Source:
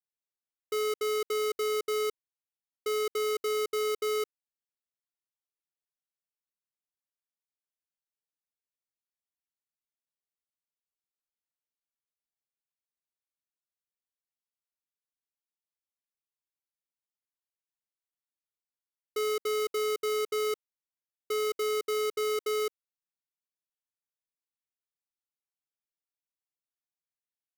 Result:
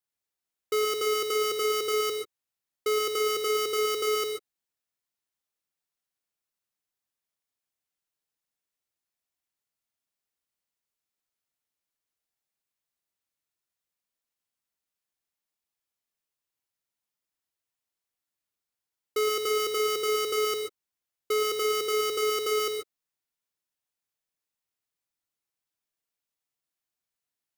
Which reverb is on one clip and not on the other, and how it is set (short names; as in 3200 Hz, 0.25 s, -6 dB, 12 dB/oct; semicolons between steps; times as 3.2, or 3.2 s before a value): non-linear reverb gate 0.16 s rising, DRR 4 dB; gain +4.5 dB